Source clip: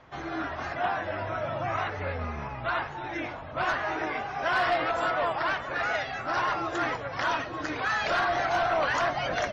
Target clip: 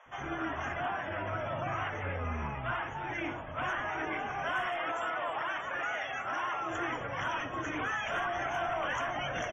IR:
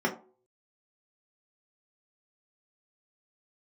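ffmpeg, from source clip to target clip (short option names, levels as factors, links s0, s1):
-filter_complex "[0:a]asettb=1/sr,asplit=3[s0][s1][s2];[s0]atrim=end=4.624[s3];[s1]atrim=start=4.62:end=6.64,asetpts=PTS-STARTPTS,afade=t=in:d=0.004:c=qsin,afade=t=out:st=2.016:d=0.004:c=qsin,lowshelf=f=220:g=-12[s4];[s2]atrim=start=6.636[s5];[s3][s4]acrossfade=d=0.004:c1=hsin:c2=qsin[s6];[s6][s5]acrossfade=d=0.004:c1=qsin:c2=hsin,alimiter=level_in=1.26:limit=0.0631:level=0:latency=1:release=16,volume=0.794,asuperstop=centerf=4400:order=12:qfactor=2,acrossover=split=560[s7][s8];[s7]adelay=60[s9];[s9][s8]amix=inputs=2:normalize=0" -ar 48000 -c:a libvorbis -b:a 48k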